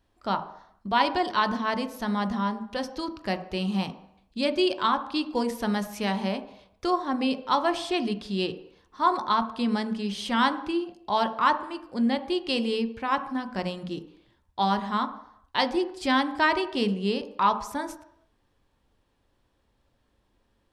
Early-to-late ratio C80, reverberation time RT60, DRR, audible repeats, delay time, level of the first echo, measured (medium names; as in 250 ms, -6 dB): 15.0 dB, 0.70 s, 7.5 dB, no echo, no echo, no echo